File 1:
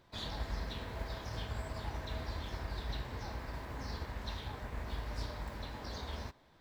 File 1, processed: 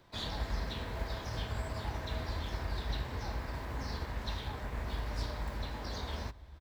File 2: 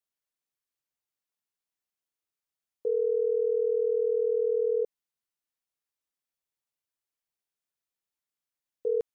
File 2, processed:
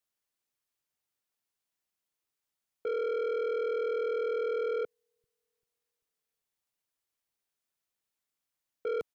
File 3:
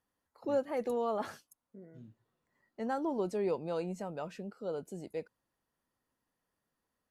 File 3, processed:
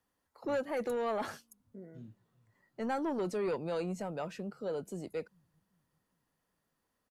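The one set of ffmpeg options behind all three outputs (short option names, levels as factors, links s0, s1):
-filter_complex "[0:a]acrossover=split=120|1300|2500[s0][s1][s2][s3];[s0]aecho=1:1:392|784|1176|1568:0.282|0.121|0.0521|0.0224[s4];[s1]asoftclip=type=tanh:threshold=0.0237[s5];[s4][s5][s2][s3]amix=inputs=4:normalize=0,volume=1.41"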